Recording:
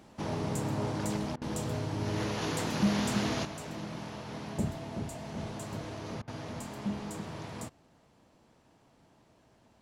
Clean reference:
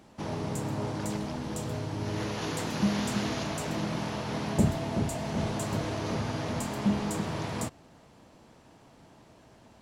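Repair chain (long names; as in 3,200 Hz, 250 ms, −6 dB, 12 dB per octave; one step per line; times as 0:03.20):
clipped peaks rebuilt −19.5 dBFS
repair the gap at 0:01.36/0:06.22, 55 ms
level 0 dB, from 0:03.45 +8 dB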